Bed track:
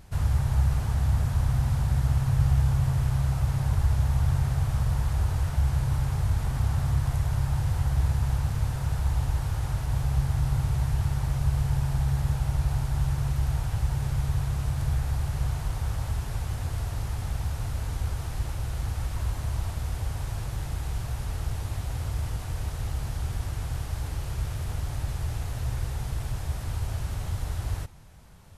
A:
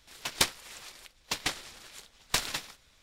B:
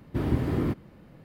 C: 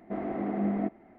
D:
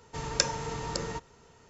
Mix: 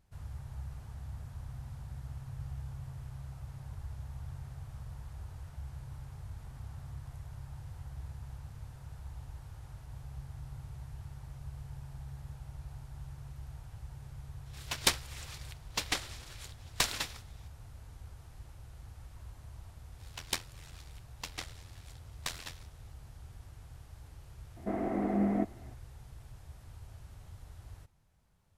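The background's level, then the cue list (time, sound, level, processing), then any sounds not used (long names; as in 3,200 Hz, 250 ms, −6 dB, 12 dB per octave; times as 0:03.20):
bed track −19.5 dB
0:14.46: mix in A −1.5 dB
0:19.92: mix in A −6.5 dB + amplitude modulation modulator 85 Hz, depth 70%
0:24.56: mix in C −0.5 dB
not used: B, D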